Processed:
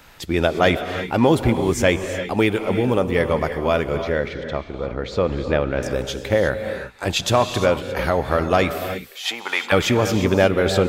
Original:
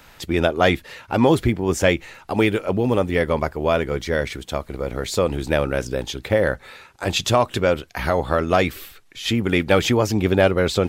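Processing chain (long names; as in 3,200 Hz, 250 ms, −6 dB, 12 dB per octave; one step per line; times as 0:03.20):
0:03.97–0:05.83: high-frequency loss of the air 200 metres
0:08.75–0:09.71: high-pass with resonance 480 Hz → 1,100 Hz, resonance Q 4.9
reverb whose tail is shaped and stops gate 380 ms rising, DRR 8 dB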